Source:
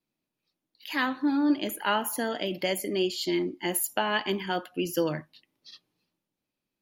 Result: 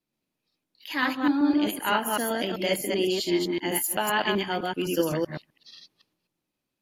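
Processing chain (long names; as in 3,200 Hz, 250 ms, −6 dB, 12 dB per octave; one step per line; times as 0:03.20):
delay that plays each chunk backwards 128 ms, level −1 dB
AAC 64 kbit/s 32,000 Hz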